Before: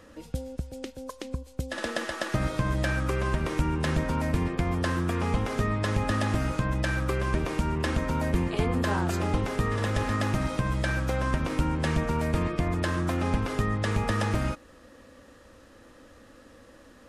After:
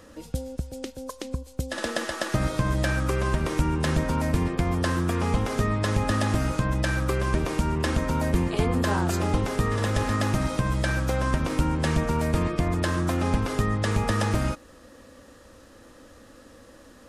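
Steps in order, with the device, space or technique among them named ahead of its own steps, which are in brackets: exciter from parts (in parallel at -5 dB: high-pass 2.8 kHz 6 dB/octave + saturation -27.5 dBFS, distortion -21 dB + high-pass 2.3 kHz 12 dB/octave); on the sum: trim +2.5 dB

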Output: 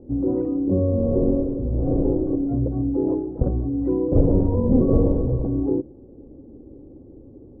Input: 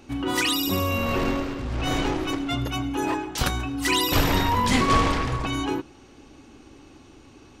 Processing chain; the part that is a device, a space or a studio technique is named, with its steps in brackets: under water (low-pass 490 Hz 24 dB/octave; peaking EQ 520 Hz +8.5 dB 0.32 oct); trim +5.5 dB

